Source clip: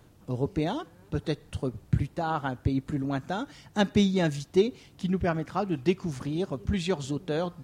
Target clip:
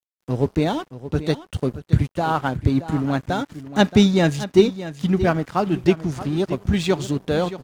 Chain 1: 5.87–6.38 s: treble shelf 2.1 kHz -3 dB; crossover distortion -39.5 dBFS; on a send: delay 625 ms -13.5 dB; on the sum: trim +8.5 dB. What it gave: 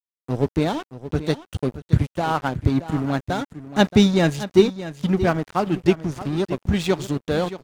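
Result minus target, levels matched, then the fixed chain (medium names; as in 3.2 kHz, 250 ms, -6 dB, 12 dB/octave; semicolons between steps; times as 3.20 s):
crossover distortion: distortion +6 dB
5.87–6.38 s: treble shelf 2.1 kHz -3 dB; crossover distortion -47 dBFS; on a send: delay 625 ms -13.5 dB; on the sum: trim +8.5 dB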